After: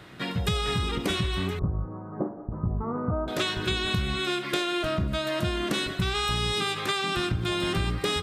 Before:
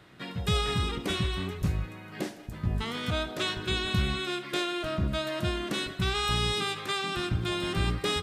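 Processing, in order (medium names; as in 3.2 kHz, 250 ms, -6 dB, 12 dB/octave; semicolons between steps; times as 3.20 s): 1.59–3.28 s: elliptic low-pass 1.2 kHz, stop band 60 dB; compression, threshold -31 dBFS, peak gain reduction 9.5 dB; trim +7.5 dB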